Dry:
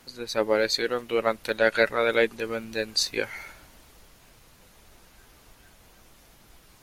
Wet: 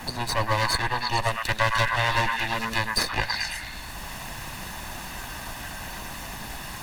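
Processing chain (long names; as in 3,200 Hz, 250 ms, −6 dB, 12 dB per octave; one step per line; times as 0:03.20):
lower of the sound and its delayed copy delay 1.1 ms
echo through a band-pass that steps 108 ms, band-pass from 1,300 Hz, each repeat 0.7 octaves, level −1 dB
multiband upward and downward compressor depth 70%
level +4.5 dB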